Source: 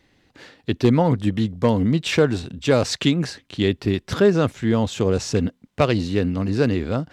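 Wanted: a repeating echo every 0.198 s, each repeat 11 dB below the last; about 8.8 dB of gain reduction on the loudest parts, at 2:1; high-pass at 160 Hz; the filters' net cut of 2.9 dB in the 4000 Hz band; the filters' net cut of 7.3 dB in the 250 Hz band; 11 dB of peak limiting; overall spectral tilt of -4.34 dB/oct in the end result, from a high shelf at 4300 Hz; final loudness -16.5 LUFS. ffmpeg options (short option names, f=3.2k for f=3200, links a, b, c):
-af "highpass=160,equalizer=f=250:t=o:g=-8.5,equalizer=f=4k:t=o:g=-8,highshelf=f=4.3k:g=7.5,acompressor=threshold=-31dB:ratio=2,alimiter=limit=-23dB:level=0:latency=1,aecho=1:1:198|396|594:0.282|0.0789|0.0221,volume=18dB"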